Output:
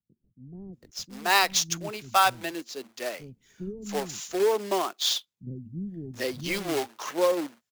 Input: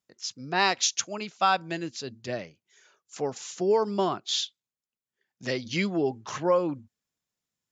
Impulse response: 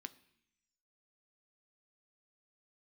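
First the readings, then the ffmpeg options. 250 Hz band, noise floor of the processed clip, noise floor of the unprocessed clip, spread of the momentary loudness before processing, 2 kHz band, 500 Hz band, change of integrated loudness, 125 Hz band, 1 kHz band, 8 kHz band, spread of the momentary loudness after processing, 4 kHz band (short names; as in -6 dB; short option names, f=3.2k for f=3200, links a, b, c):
-2.0 dB, -82 dBFS, under -85 dBFS, 12 LU, +2.5 dB, 0.0 dB, +1.0 dB, -1.5 dB, +1.0 dB, n/a, 18 LU, +2.0 dB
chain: -filter_complex "[0:a]acrusher=bits=2:mode=log:mix=0:aa=0.000001,acrossover=split=250[a][b];[b]adelay=730[c];[a][c]amix=inputs=2:normalize=0,acrossover=split=570[d][e];[d]aeval=exprs='val(0)*(1-0.5/2+0.5/2*cos(2*PI*1.1*n/s))':c=same[f];[e]aeval=exprs='val(0)*(1-0.5/2-0.5/2*cos(2*PI*1.1*n/s))':c=same[g];[f][g]amix=inputs=2:normalize=0,volume=2.5dB"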